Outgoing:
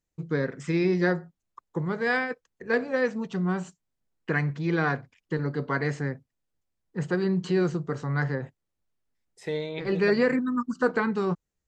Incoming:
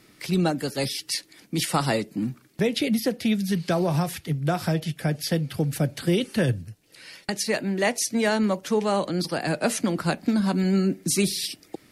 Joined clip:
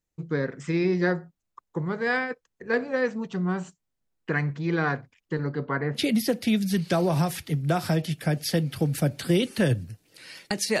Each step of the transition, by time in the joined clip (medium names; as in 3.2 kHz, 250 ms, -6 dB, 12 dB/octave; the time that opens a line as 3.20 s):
outgoing
5.49–6.01 s: low-pass 6.2 kHz -> 1 kHz
5.97 s: go over to incoming from 2.75 s, crossfade 0.08 s